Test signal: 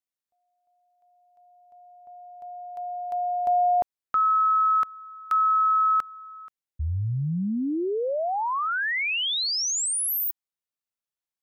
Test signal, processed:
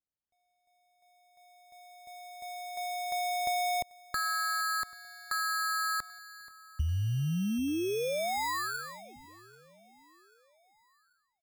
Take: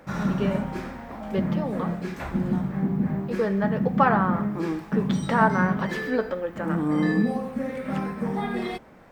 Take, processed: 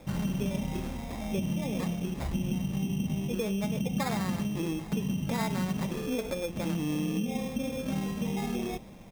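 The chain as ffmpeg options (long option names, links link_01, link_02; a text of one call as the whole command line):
ffmpeg -i in.wav -af "lowpass=frequency=1200:width=0.5412,lowpass=frequency=1200:width=1.3066,lowshelf=frequency=180:gain=11,acompressor=threshold=-28dB:ratio=5:attack=48:release=85:knee=6,acrusher=samples=15:mix=1:aa=0.000001,aecho=1:1:788|1576|2364:0.075|0.0352|0.0166,volume=-3dB" out.wav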